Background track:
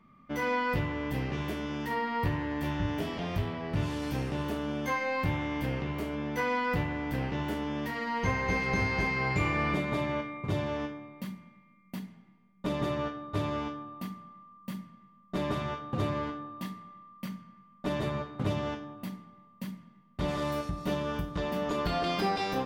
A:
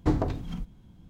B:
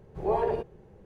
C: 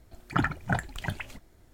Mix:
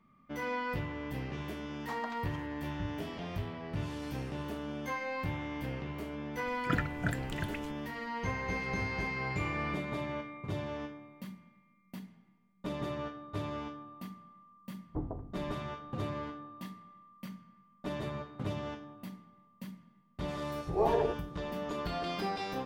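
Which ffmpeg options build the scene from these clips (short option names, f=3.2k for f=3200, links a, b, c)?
-filter_complex "[1:a]asplit=2[a][b];[0:a]volume=-6dB[c];[a]highpass=f=830:w=0.5412,highpass=f=830:w=1.3066[d];[3:a]asuperstop=centerf=910:order=4:qfactor=1.5[e];[b]lowpass=f=1.1k:w=0.5412,lowpass=f=1.1k:w=1.3066[f];[d]atrim=end=1.09,asetpts=PTS-STARTPTS,volume=-5.5dB,afade=t=in:d=0.004:c=hsin,afade=t=out:st=1.086:d=0.004:c=hsin,adelay=1820[g];[e]atrim=end=1.73,asetpts=PTS-STARTPTS,volume=-5dB,afade=t=in:d=0.004:c=hsin,afade=t=out:st=1.726:d=0.004:c=hsin,adelay=279594S[h];[f]atrim=end=1.09,asetpts=PTS-STARTPTS,volume=-12.5dB,afade=t=in:d=0.004:c=hsin,afade=t=out:st=1.086:d=0.004:c=hsin,adelay=14890[i];[2:a]atrim=end=1.05,asetpts=PTS-STARTPTS,volume=-2dB,afade=t=in:d=0.004:c=hsin,afade=t=out:st=1.046:d=0.004:c=hsin,adelay=20510[j];[c][g][h][i][j]amix=inputs=5:normalize=0"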